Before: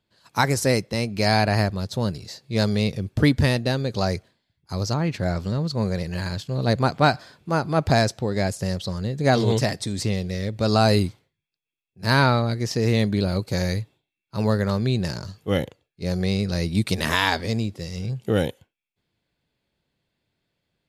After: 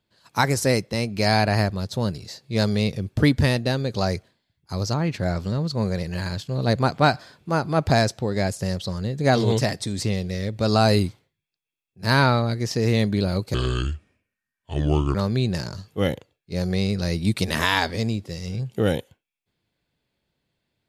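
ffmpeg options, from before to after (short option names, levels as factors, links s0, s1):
-filter_complex "[0:a]asplit=3[s0][s1][s2];[s0]atrim=end=13.544[s3];[s1]atrim=start=13.54:end=14.65,asetpts=PTS-STARTPTS,asetrate=30429,aresample=44100,atrim=end_sample=70943,asetpts=PTS-STARTPTS[s4];[s2]atrim=start=14.646[s5];[s3][s4]acrossfade=d=0.004:c1=hsin:c2=hsin[s6];[s6][s5]acrossfade=d=0.004:c1=hsin:c2=hsin"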